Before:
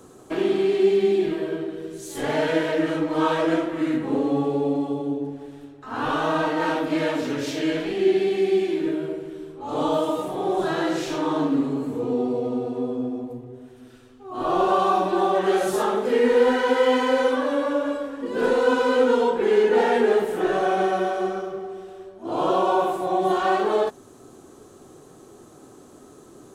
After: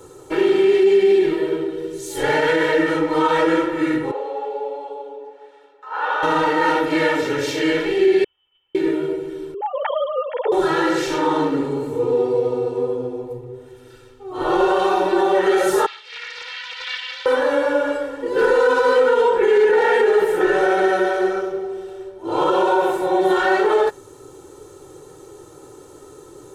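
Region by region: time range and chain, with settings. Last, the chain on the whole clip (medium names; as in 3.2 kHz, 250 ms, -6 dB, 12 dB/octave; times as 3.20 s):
4.11–6.23 s: high-pass 560 Hz 24 dB/octave + tape spacing loss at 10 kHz 20 dB
8.24–8.75 s: one-bit delta coder 32 kbps, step -24.5 dBFS + gate -13 dBFS, range -48 dB + frequency inversion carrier 3.4 kHz
9.54–10.52 s: formants replaced by sine waves + compression 1.5:1, threshold -27 dBFS
15.86–17.26 s: Butterworth band-pass 3.4 kHz, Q 1.4 + loudspeaker Doppler distortion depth 0.26 ms
whole clip: dynamic bell 1.7 kHz, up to +6 dB, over -41 dBFS, Q 1.6; comb 2.2 ms, depth 91%; loudness maximiser +9.5 dB; trim -7 dB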